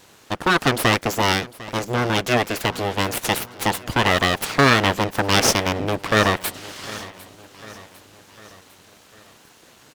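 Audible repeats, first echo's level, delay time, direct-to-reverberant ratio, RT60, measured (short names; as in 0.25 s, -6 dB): 3, -19.0 dB, 0.751 s, none, none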